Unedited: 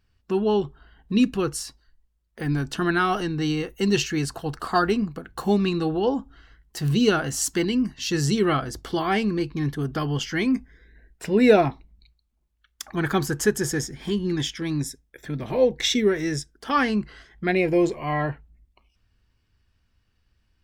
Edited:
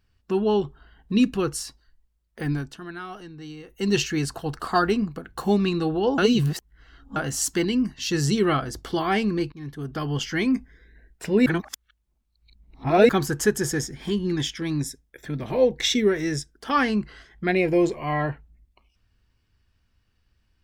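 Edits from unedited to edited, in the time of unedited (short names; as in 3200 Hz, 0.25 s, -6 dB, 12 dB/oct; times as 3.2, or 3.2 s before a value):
2.46–3.95 dip -14.5 dB, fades 0.32 s
6.18–7.16 reverse
9.52–10.21 fade in, from -17 dB
11.46–13.09 reverse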